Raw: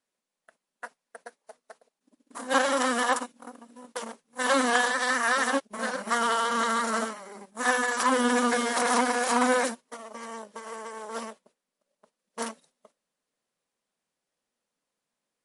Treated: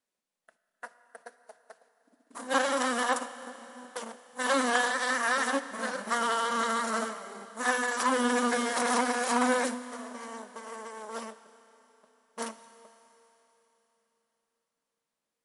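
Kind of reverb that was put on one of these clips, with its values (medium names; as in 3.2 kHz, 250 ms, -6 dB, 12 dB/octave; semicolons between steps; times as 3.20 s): Schroeder reverb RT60 3.8 s, combs from 25 ms, DRR 13 dB; trim -3 dB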